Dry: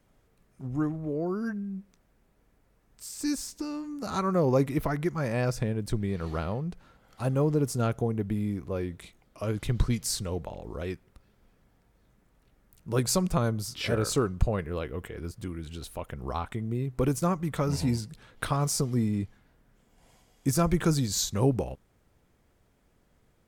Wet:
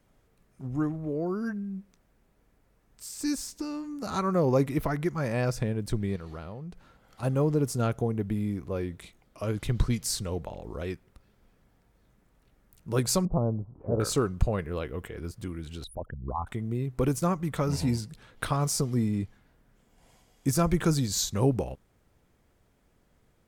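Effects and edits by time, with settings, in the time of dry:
0:06.16–0:07.23: downward compressor 2 to 1, threshold −42 dBFS
0:13.25–0:14.00: Butterworth low-pass 930 Hz
0:15.84–0:16.47: spectral envelope exaggerated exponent 3

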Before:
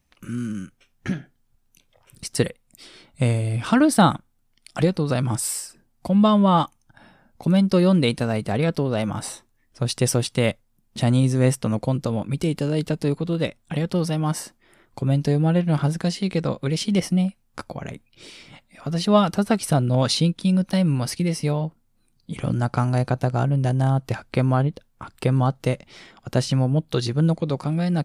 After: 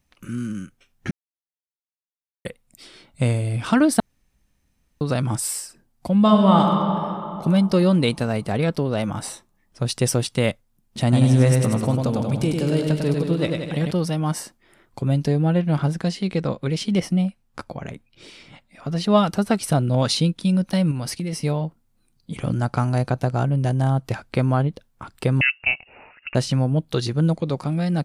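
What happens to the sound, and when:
0:01.11–0:02.45: silence
0:04.00–0:05.01: fill with room tone
0:06.20–0:06.62: thrown reverb, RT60 3 s, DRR 0.5 dB
0:11.02–0:13.91: bouncing-ball delay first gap 100 ms, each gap 0.85×, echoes 6
0:15.27–0:19.10: high-shelf EQ 6,400 Hz −6.5 dB
0:20.91–0:21.33: downward compressor, threshold −23 dBFS
0:25.41–0:26.35: voice inversion scrambler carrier 2,800 Hz

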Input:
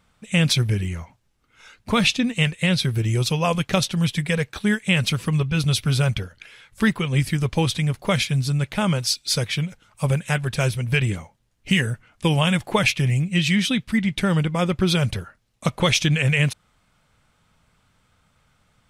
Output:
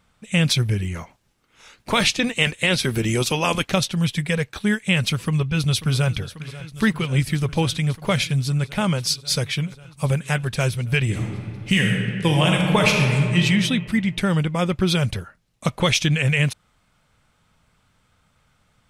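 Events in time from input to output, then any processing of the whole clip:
0:00.94–0:03.71: ceiling on every frequency bin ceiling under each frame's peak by 13 dB
0:05.16–0:06.11: delay throw 540 ms, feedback 85%, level −16 dB
0:11.03–0:13.40: thrown reverb, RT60 2.1 s, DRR 0.5 dB

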